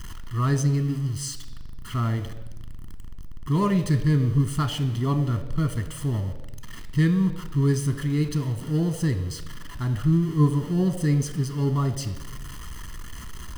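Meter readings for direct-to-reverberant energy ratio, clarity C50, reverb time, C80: 8.5 dB, 12.0 dB, 1.0 s, 13.5 dB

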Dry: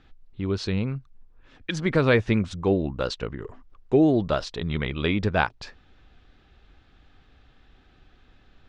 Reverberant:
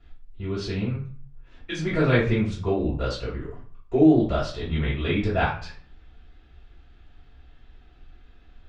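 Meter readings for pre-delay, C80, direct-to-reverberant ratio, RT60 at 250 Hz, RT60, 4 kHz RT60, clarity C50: 3 ms, 10.5 dB, -12.0 dB, 0.60 s, 0.45 s, 0.35 s, 5.5 dB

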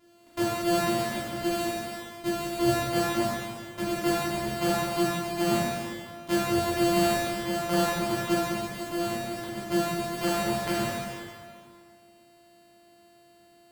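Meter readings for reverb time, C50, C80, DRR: 2.0 s, -3.0 dB, -1.0 dB, -9.0 dB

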